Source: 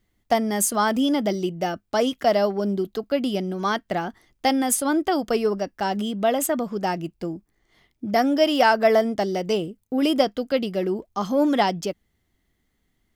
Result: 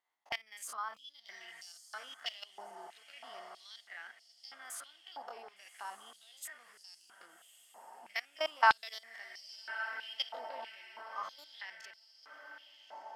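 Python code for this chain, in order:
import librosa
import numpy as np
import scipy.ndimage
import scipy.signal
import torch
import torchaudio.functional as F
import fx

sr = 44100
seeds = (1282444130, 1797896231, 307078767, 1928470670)

y = fx.spec_steps(x, sr, hold_ms=50)
y = fx.high_shelf(y, sr, hz=7700.0, db=-8.0)
y = fx.level_steps(y, sr, step_db=19)
y = fx.leveller(y, sr, passes=1, at=(1.28, 2.44))
y = fx.echo_diffused(y, sr, ms=1169, feedback_pct=54, wet_db=-12.0)
y = fx.filter_held_highpass(y, sr, hz=3.1, low_hz=890.0, high_hz=4900.0)
y = y * 10.0 ** (-6.0 / 20.0)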